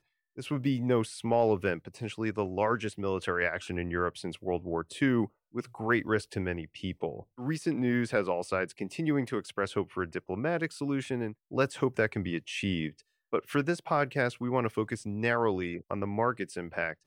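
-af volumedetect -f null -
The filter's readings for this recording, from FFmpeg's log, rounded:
mean_volume: -31.2 dB
max_volume: -14.2 dB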